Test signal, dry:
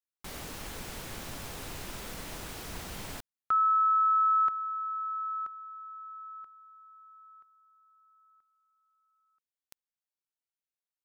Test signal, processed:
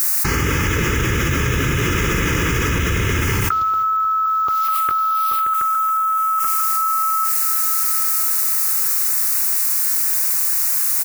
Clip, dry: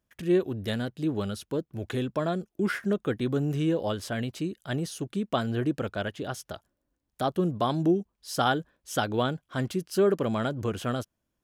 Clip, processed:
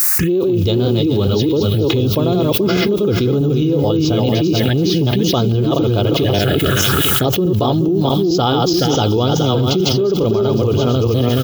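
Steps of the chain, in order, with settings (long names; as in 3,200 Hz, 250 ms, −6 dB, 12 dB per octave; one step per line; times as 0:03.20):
feedback delay that plays each chunk backwards 213 ms, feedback 44%, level −3 dB
Butterworth low-pass 7,200 Hz 96 dB per octave
notch filter 780 Hz, Q 12
downward expander −48 dBFS
high-pass filter 92 Hz 12 dB per octave
low-shelf EQ 130 Hz +10 dB
comb filter 2.4 ms, depth 41%
background noise blue −56 dBFS
phaser swept by the level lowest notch 540 Hz, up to 1,800 Hz, full sweep at −24 dBFS
on a send: delay with a high-pass on its return 502 ms, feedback 46%, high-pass 2,000 Hz, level −11 dB
on the sum: boost into a limiter +16 dB
envelope flattener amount 100%
level −9.5 dB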